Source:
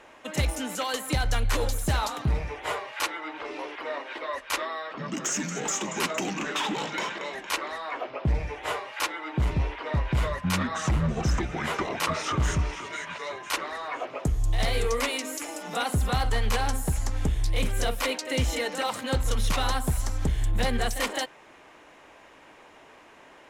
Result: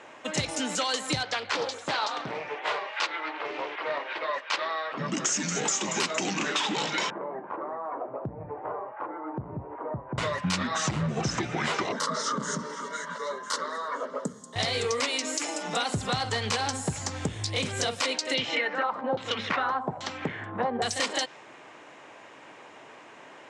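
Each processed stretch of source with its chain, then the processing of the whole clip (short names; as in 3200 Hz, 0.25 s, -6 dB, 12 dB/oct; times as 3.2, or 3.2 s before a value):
1.23–4.93 BPF 380–4100 Hz + Doppler distortion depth 0.7 ms
7.1–10.18 LPF 1100 Hz 24 dB/oct + compressor 4:1, threshold -33 dBFS
11.92–14.56 fixed phaser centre 500 Hz, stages 8 + compressor 2:1, threshold -29 dBFS + resonant high-pass 230 Hz, resonance Q 1.6
18.34–20.82 HPF 200 Hz + LFO low-pass saw down 1.2 Hz 690–3800 Hz
whole clip: elliptic band-pass 110–8300 Hz, stop band 40 dB; dynamic EQ 4700 Hz, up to +8 dB, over -48 dBFS, Q 1.2; compressor, threshold -28 dBFS; gain +3.5 dB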